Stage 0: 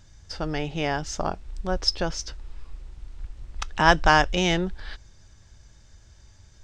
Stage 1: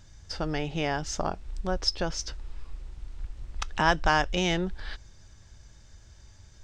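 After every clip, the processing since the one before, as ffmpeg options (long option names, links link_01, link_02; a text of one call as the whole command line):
ffmpeg -i in.wav -af "acompressor=threshold=-28dB:ratio=1.5" out.wav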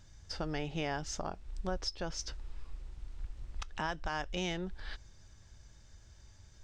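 ffmpeg -i in.wav -af "alimiter=limit=-19.5dB:level=0:latency=1:release=408,volume=-5dB" out.wav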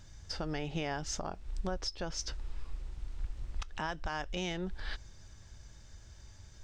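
ffmpeg -i in.wav -af "alimiter=level_in=5.5dB:limit=-24dB:level=0:latency=1:release=222,volume=-5.5dB,volume=4dB" out.wav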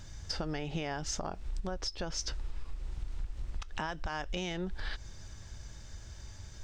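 ffmpeg -i in.wav -af "acompressor=threshold=-38dB:ratio=6,volume=6dB" out.wav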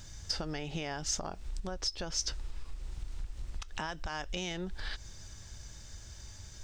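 ffmpeg -i in.wav -af "highshelf=frequency=3900:gain=8.5,volume=-2dB" out.wav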